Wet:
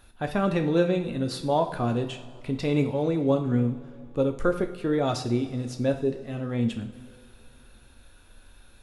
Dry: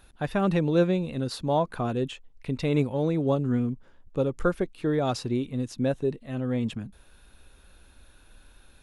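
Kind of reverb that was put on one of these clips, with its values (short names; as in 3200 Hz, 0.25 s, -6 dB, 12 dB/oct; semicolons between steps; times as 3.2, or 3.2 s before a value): two-slope reverb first 0.48 s, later 2.9 s, from -17 dB, DRR 5 dB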